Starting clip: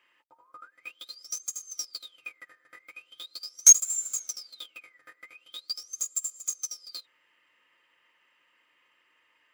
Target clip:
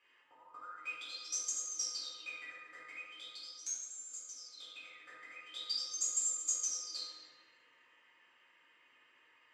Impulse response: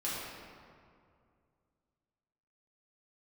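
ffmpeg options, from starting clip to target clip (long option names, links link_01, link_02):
-filter_complex "[0:a]lowpass=frequency=8700:width=0.5412,lowpass=frequency=8700:width=1.3066,asettb=1/sr,asplit=3[link_01][link_02][link_03];[link_01]atrim=end=2.974[link_04];[link_02]atrim=start=2.97:end=5.4,asetpts=PTS-STARTPTS,afade=type=in:duration=0.004:curve=qsin,afade=type=out:start_time=2.426:duration=0.004:curve=qsin,acompressor=threshold=-46dB:ratio=3[link_05];[link_03]atrim=start=5.396[link_06];[link_04][link_05]acrossfade=duration=0.004:curve1=hsin:curve2=qsin[link_07];[link_07][link_06]acrossfade=duration=0.004:curve1=qsin:curve2=hsin[link_08];[1:a]atrim=start_sample=2205,asetrate=61740,aresample=44100[link_09];[link_08][link_09]afir=irnorm=-1:irlink=0,volume=-1.5dB"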